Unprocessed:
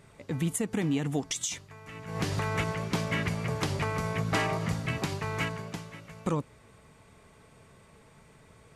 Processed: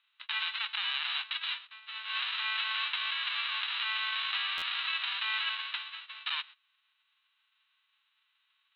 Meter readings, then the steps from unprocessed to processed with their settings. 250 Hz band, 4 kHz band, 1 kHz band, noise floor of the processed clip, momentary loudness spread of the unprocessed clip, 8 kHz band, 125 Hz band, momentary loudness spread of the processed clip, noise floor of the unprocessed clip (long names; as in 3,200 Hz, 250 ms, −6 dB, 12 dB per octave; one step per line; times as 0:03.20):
below −40 dB, +10.0 dB, −4.0 dB, −76 dBFS, 11 LU, below −30 dB, below −40 dB, 7 LU, −58 dBFS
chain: spectral envelope flattened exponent 0.1
Bessel high-pass filter 1,900 Hz, order 6
in parallel at +1 dB: compressor whose output falls as the input rises −35 dBFS, ratio −0.5
on the sum: noise gate −40 dBFS, range −20 dB
Chebyshev low-pass with heavy ripple 4,000 Hz, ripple 6 dB
buffer that repeats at 0:04.57, samples 512, times 4
level +5 dB